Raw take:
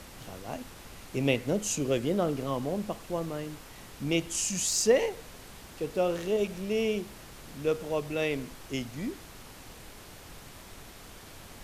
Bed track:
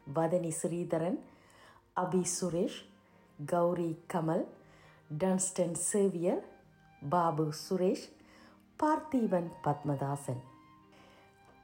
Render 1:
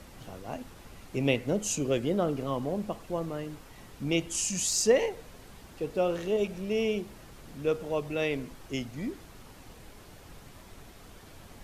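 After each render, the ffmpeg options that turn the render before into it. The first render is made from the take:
-af "afftdn=nr=6:nf=-49"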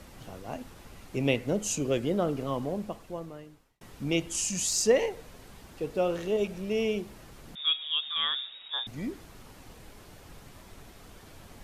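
-filter_complex "[0:a]asettb=1/sr,asplit=3[s0][s1][s2];[s0]atrim=end=7.554[s3];[s1]atrim=start=7.55:end=8.87,asetpts=PTS-STARTPTS,afade=t=in:d=0.004:c=qsin,afade=t=out:st=1.316:d=0.004:c=qsin,lowpass=f=3200:t=q:w=0.5098,lowpass=f=3200:t=q:w=0.6013,lowpass=f=3200:t=q:w=0.9,lowpass=f=3200:t=q:w=2.563,afreqshift=-3800[s4];[s2]atrim=start=8.866[s5];[s3][s4]acrossfade=d=0.004:c1=hsin:c2=qsin[s6];[s6][s5]acrossfade=d=0.004:c1=qsin:c2=hsin,asplit=2[s7][s8];[s7]atrim=end=3.81,asetpts=PTS-STARTPTS,afade=t=out:st=2.61:d=1.2[s9];[s8]atrim=start=3.81,asetpts=PTS-STARTPTS,afade=t=in:d=0.004:c=hsin[s10];[s9][s10]concat=n=2:v=0:a=1"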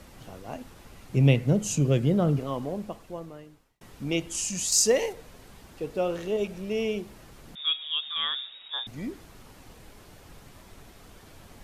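-filter_complex "[0:a]asettb=1/sr,asplit=3[s0][s1][s2];[s0]atrim=end=1.094[s3];[s1]atrim=start=1.09:end=2.39,asetpts=PTS-STARTPTS,afade=t=in:d=0.004:c=qsin,afade=t=out:st=1.296:d=0.004:c=qsin,equalizer=f=140:w=1.5:g=14.5[s4];[s2]atrim=start=2.386[s5];[s3][s4]acrossfade=d=0.004:c1=hsin:c2=qsin[s6];[s6][s5]acrossfade=d=0.004:c1=qsin:c2=hsin,asettb=1/sr,asplit=3[s7][s8][s9];[s7]atrim=end=4.724[s10];[s8]atrim=start=4.72:end=5.13,asetpts=PTS-STARTPTS,afade=t=in:d=0.004:c=qsin,afade=t=out:st=0.406:d=0.004:c=qsin,bass=f=250:g=-1,treble=f=4000:g=8[s11];[s9]atrim=start=5.126[s12];[s10][s11]acrossfade=d=0.004:c1=hsin:c2=qsin[s13];[s13][s12]acrossfade=d=0.004:c1=qsin:c2=hsin"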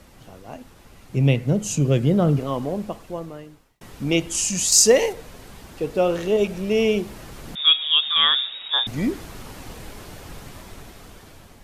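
-af "dynaudnorm=f=750:g=5:m=4.22"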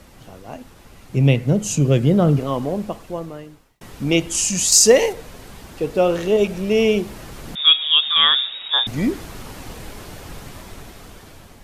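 -af "volume=1.41,alimiter=limit=0.891:level=0:latency=1"

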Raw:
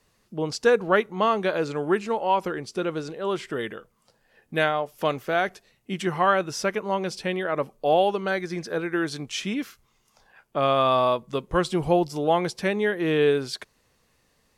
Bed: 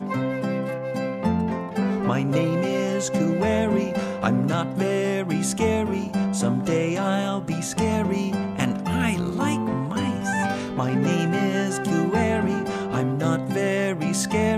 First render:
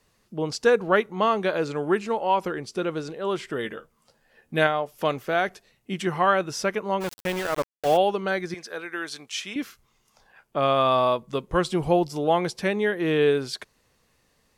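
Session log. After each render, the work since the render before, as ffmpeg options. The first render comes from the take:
-filter_complex "[0:a]asettb=1/sr,asplit=3[s0][s1][s2];[s0]atrim=end=3.644[s3];[s1]atrim=start=3.64:end=4.67,asetpts=PTS-STARTPTS,afade=t=in:d=0.004:c=qsin,afade=t=out:st=1.026:d=0.004:c=qsin,asplit=2[s4][s5];[s5]adelay=13,volume=0.447[s6];[s4][s6]amix=inputs=2:normalize=0,atrim=end_sample=45423[s7];[s2]atrim=start=4.666[s8];[s3][s7]acrossfade=d=0.004:c1=hsin:c2=qsin[s9];[s9][s8]acrossfade=d=0.004:c1=qsin:c2=hsin,asplit=3[s10][s11][s12];[s10]afade=t=out:st=7:d=0.02[s13];[s11]aeval=exprs='val(0)*gte(abs(val(0)),0.0376)':c=same,afade=t=in:st=7:d=0.02,afade=t=out:st=7.96:d=0.02[s14];[s12]afade=t=in:st=7.96:d=0.02[s15];[s13][s14][s15]amix=inputs=3:normalize=0,asettb=1/sr,asplit=3[s16][s17][s18];[s16]atrim=end=8.544[s19];[s17]atrim=start=8.54:end=9.56,asetpts=PTS-STARTPTS,afade=t=in:d=0.004:c=qsin,afade=t=out:st=1.016:d=0.004:c=qsin,highpass=f=1100:p=1[s20];[s18]atrim=start=9.556[s21];[s19][s20]acrossfade=d=0.004:c1=hsin:c2=qsin[s22];[s22][s21]acrossfade=d=0.004:c1=qsin:c2=hsin"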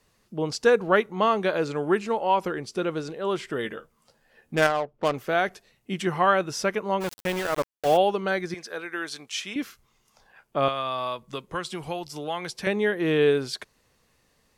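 -filter_complex "[0:a]asettb=1/sr,asplit=3[s0][s1][s2];[s0]atrim=end=4.554[s3];[s1]atrim=start=4.55:end=5.14,asetpts=PTS-STARTPTS,afade=t=in:d=0.004:c=qsin,afade=t=out:st=0.586:d=0.004:c=qsin,adynamicsmooth=sensitivity=2.5:basefreq=500[s4];[s2]atrim=start=5.136[s5];[s3][s4]acrossfade=d=0.004:c1=hsin:c2=qsin[s6];[s6][s5]acrossfade=d=0.004:c1=qsin:c2=hsin,asettb=1/sr,asplit=3[s7][s8][s9];[s7]atrim=end=10.684[s10];[s8]atrim=start=10.68:end=12.67,asetpts=PTS-STARTPTS,afade=t=in:d=0.004:c=qsin,afade=t=out:st=1.986:d=0.004:c=qsin,acrossover=split=92|1100[s11][s12][s13];[s11]acompressor=threshold=0.00158:ratio=4[s14];[s12]acompressor=threshold=0.02:ratio=4[s15];[s13]acompressor=threshold=0.0316:ratio=4[s16];[s14][s15][s16]amix=inputs=3:normalize=0[s17];[s9]atrim=start=12.666[s18];[s10][s17]acrossfade=d=0.004:c1=hsin:c2=qsin[s19];[s19][s18]acrossfade=d=0.004:c1=qsin:c2=hsin"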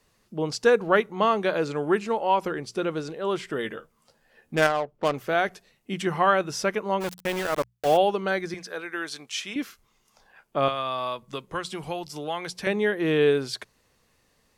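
-af "bandreject=f=60:t=h:w=6,bandreject=f=120:t=h:w=6,bandreject=f=180:t=h:w=6"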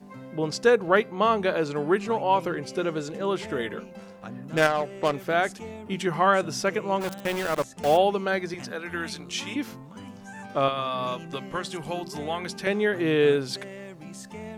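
-filter_complex "[1:a]volume=0.133[s0];[0:a][s0]amix=inputs=2:normalize=0"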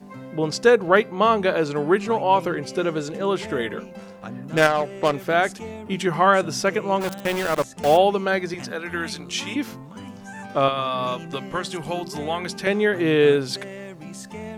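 -af "volume=1.58"

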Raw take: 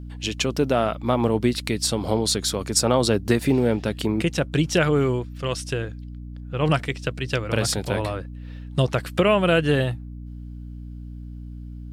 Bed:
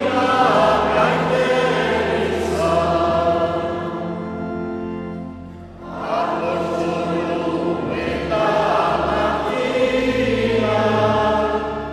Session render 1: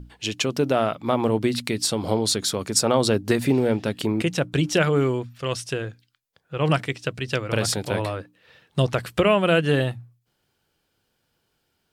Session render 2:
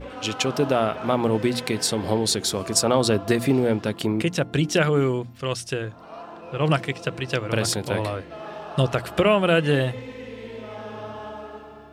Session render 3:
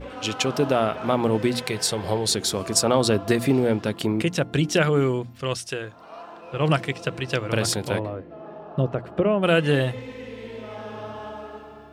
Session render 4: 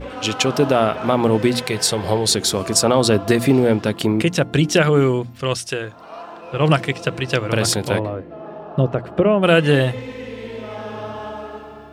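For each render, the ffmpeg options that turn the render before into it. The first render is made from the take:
-af "bandreject=f=60:t=h:w=6,bandreject=f=120:t=h:w=6,bandreject=f=180:t=h:w=6,bandreject=f=240:t=h:w=6,bandreject=f=300:t=h:w=6"
-filter_complex "[1:a]volume=0.112[s0];[0:a][s0]amix=inputs=2:normalize=0"
-filter_complex "[0:a]asettb=1/sr,asplit=3[s0][s1][s2];[s0]atrim=end=1.624[s3];[s1]atrim=start=1.62:end=2.29,asetpts=PTS-STARTPTS,afade=t=in:d=0.004:c=qsin,afade=t=out:st=0.666:d=0.004:c=qsin,equalizer=f=260:w=3.4:g=-14[s4];[s2]atrim=start=2.286[s5];[s3][s4]acrossfade=d=0.004:c1=hsin:c2=qsin[s6];[s6][s5]acrossfade=d=0.004:c1=qsin:c2=hsin,asettb=1/sr,asplit=3[s7][s8][s9];[s7]atrim=end=5.574[s10];[s8]atrim=start=5.57:end=6.54,asetpts=PTS-STARTPTS,afade=t=in:d=0.004:c=qsin,afade=t=out:st=0.966:d=0.004:c=qsin,lowshelf=f=300:g=-8.5[s11];[s9]atrim=start=6.536[s12];[s10][s11]acrossfade=d=0.004:c1=hsin:c2=qsin[s13];[s13][s12]acrossfade=d=0.004:c1=qsin:c2=hsin,asplit=3[s14][s15][s16];[s14]afade=t=out:st=7.98:d=0.02[s17];[s15]bandpass=f=260:t=q:w=0.54,afade=t=in:st=7.98:d=0.02,afade=t=out:st=9.42:d=0.02[s18];[s16]afade=t=in:st=9.42:d=0.02[s19];[s17][s18][s19]amix=inputs=3:normalize=0"
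-af "volume=1.88,alimiter=limit=0.708:level=0:latency=1"

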